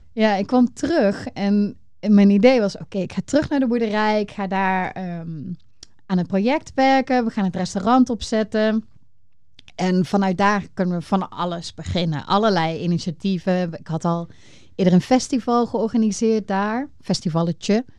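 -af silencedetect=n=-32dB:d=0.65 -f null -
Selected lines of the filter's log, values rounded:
silence_start: 8.80
silence_end: 9.59 | silence_duration: 0.79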